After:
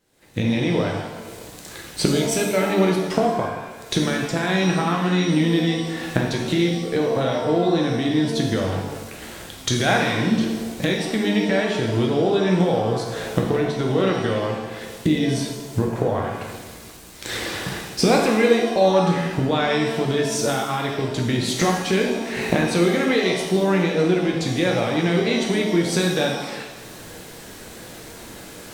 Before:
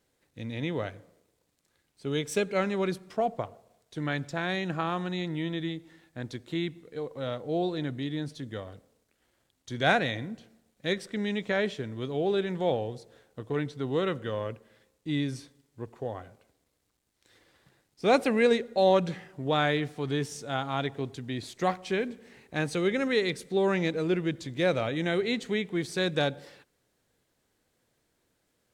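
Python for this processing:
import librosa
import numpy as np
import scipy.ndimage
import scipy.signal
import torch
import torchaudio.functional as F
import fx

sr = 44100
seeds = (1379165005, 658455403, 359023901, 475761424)

y = fx.recorder_agc(x, sr, target_db=-16.5, rise_db_per_s=55.0, max_gain_db=30)
y = fx.rev_shimmer(y, sr, seeds[0], rt60_s=1.0, semitones=7, shimmer_db=-8, drr_db=0.0)
y = y * librosa.db_to_amplitude(2.0)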